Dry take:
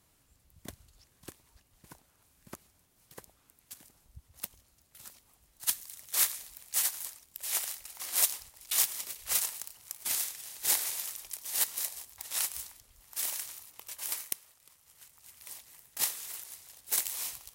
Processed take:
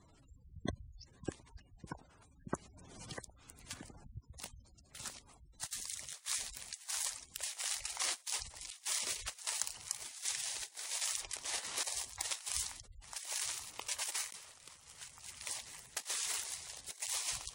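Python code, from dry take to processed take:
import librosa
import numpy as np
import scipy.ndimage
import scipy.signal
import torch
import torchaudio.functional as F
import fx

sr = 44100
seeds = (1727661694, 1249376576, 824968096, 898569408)

y = fx.high_shelf(x, sr, hz=4100.0, db=-7.5, at=(11.21, 11.84))
y = fx.over_compress(y, sr, threshold_db=-39.0, ratio=-0.5)
y = scipy.signal.savgol_filter(y, 9, 4, mode='constant')
y = fx.spec_gate(y, sr, threshold_db=-15, keep='strong')
y = fx.band_squash(y, sr, depth_pct=100, at=(2.54, 4.3))
y = F.gain(torch.from_numpy(y), 3.5).numpy()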